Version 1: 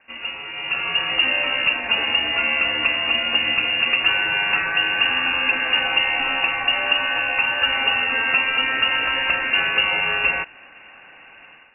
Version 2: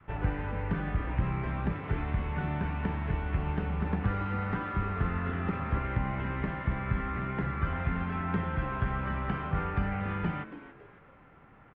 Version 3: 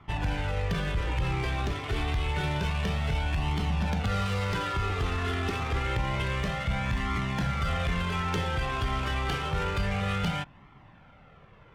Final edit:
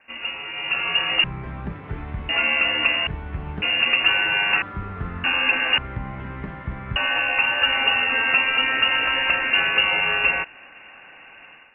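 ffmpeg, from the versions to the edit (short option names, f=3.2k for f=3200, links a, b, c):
-filter_complex "[1:a]asplit=4[a][b][c][d];[0:a]asplit=5[e][f][g][h][i];[e]atrim=end=1.242[j];[a]atrim=start=1.238:end=2.292[k];[f]atrim=start=2.288:end=3.072[l];[b]atrim=start=3.068:end=3.622[m];[g]atrim=start=3.618:end=4.622[n];[c]atrim=start=4.618:end=5.242[o];[h]atrim=start=5.238:end=5.782[p];[d]atrim=start=5.778:end=6.962[q];[i]atrim=start=6.958[r];[j][k]acrossfade=d=0.004:c1=hsin:c2=hsin[s];[s][l]acrossfade=d=0.004:c1=hsin:c2=hsin[t];[t][m]acrossfade=d=0.004:c1=hsin:c2=hsin[u];[u][n]acrossfade=d=0.004:c1=hsin:c2=hsin[v];[v][o]acrossfade=d=0.004:c1=hsin:c2=hsin[w];[w][p]acrossfade=d=0.004:c1=hsin:c2=hsin[x];[x][q]acrossfade=d=0.004:c1=hsin:c2=hsin[y];[y][r]acrossfade=d=0.004:c1=hsin:c2=hsin"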